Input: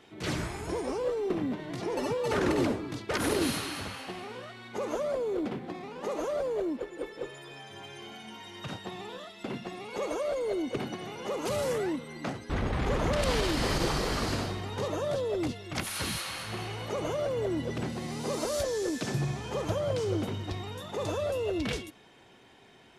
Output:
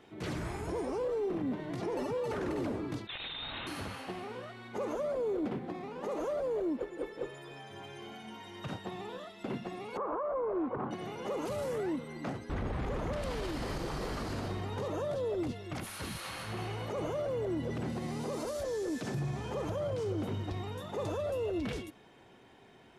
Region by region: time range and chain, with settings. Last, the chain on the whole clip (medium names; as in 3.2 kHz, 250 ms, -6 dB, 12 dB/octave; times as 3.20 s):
3.07–3.67 s: bass shelf 160 Hz -10.5 dB + frequency inversion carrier 4 kHz
9.97–10.91 s: resonant low-pass 1.1 kHz, resonance Q 5.9 + loudspeaker Doppler distortion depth 0.23 ms
whole clip: treble shelf 7.8 kHz +8 dB; peak limiter -26.5 dBFS; treble shelf 2.7 kHz -11 dB